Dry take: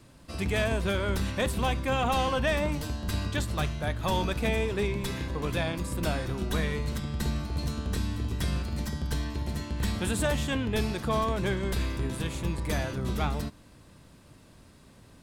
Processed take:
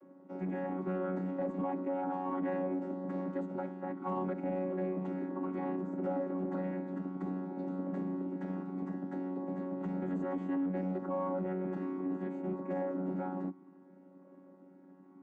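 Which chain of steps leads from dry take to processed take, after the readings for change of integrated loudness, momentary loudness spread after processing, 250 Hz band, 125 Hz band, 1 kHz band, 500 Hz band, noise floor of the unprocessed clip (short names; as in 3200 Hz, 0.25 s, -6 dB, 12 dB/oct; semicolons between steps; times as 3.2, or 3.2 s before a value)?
-6.5 dB, 4 LU, -1.5 dB, -12.5 dB, -7.5 dB, -5.0 dB, -55 dBFS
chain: chord vocoder bare fifth, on F#3; bell 3800 Hz -14 dB 2.2 oct; in parallel at -4 dB: one-sided clip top -33 dBFS; on the sum: three-band isolator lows -16 dB, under 250 Hz, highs -18 dB, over 2100 Hz; limiter -27.5 dBFS, peak gain reduction 9.5 dB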